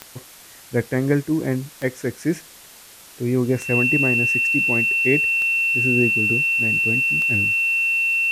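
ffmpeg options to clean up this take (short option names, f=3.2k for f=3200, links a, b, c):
-af "adeclick=t=4,bandreject=f=2.7k:w=30,afwtdn=0.0071"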